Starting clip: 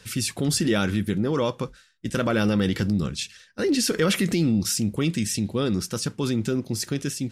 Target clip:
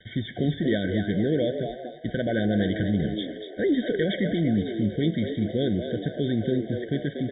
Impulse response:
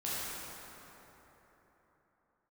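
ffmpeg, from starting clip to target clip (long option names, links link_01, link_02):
-filter_complex "[0:a]equalizer=frequency=860:width_type=o:width=0.87:gain=5,alimiter=limit=-14.5dB:level=0:latency=1:release=376,aresample=8000,acrusher=bits=7:mix=0:aa=0.000001,aresample=44100,asplit=6[link_01][link_02][link_03][link_04][link_05][link_06];[link_02]adelay=237,afreqshift=110,volume=-8.5dB[link_07];[link_03]adelay=474,afreqshift=220,volume=-15.8dB[link_08];[link_04]adelay=711,afreqshift=330,volume=-23.2dB[link_09];[link_05]adelay=948,afreqshift=440,volume=-30.5dB[link_10];[link_06]adelay=1185,afreqshift=550,volume=-37.8dB[link_11];[link_01][link_07][link_08][link_09][link_10][link_11]amix=inputs=6:normalize=0,asplit=2[link_12][link_13];[1:a]atrim=start_sample=2205,afade=type=out:start_time=0.36:duration=0.01,atrim=end_sample=16317[link_14];[link_13][link_14]afir=irnorm=-1:irlink=0,volume=-23dB[link_15];[link_12][link_15]amix=inputs=2:normalize=0,afftfilt=real='re*eq(mod(floor(b*sr/1024/750),2),0)':imag='im*eq(mod(floor(b*sr/1024/750),2),0)':win_size=1024:overlap=0.75,volume=-1dB"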